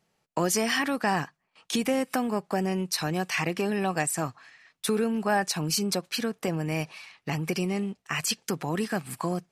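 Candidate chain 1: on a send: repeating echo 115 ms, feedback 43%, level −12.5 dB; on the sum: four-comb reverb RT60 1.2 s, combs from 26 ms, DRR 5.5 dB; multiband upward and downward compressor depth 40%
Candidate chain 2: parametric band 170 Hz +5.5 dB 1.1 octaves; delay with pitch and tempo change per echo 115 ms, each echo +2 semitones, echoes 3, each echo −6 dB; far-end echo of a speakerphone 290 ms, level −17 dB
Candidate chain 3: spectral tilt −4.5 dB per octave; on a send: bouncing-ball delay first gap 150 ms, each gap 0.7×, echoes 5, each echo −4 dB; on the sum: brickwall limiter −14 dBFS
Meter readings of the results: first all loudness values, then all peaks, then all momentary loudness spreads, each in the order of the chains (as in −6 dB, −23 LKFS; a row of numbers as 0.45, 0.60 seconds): −27.0, −25.5, −23.0 LKFS; −10.0, −9.0, −14.0 dBFS; 6, 6, 5 LU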